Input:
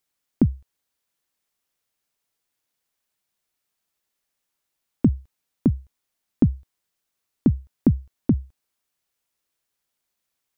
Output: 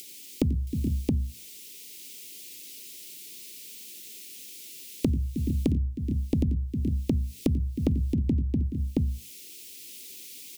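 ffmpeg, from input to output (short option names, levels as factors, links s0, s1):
-filter_complex "[0:a]acrossover=split=180[s0][s1];[s1]acompressor=mode=upward:threshold=0.0355:ratio=2.5[s2];[s0][s2]amix=inputs=2:normalize=0,equalizer=f=70:t=o:w=0.69:g=11.5,asplit=2[s3][s4];[s4]volume=11.9,asoftclip=hard,volume=0.0841,volume=0.447[s5];[s3][s5]amix=inputs=2:normalize=0,asuperstop=centerf=1000:order=8:qfactor=0.52,bandreject=f=60:t=h:w=6,bandreject=f=120:t=h:w=6,bandreject=f=180:t=h:w=6,bandreject=f=240:t=h:w=6,aecho=1:1:90|109|314|426|454|672:0.398|0.141|0.168|0.158|0.126|0.631,acompressor=threshold=0.0562:ratio=16,volume=1.41"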